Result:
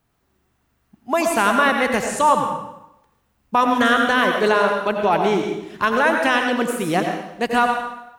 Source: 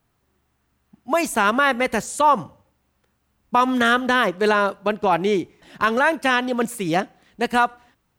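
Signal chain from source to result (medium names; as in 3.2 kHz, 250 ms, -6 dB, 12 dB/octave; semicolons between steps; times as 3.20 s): plate-style reverb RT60 0.85 s, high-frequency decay 0.9×, pre-delay 75 ms, DRR 3 dB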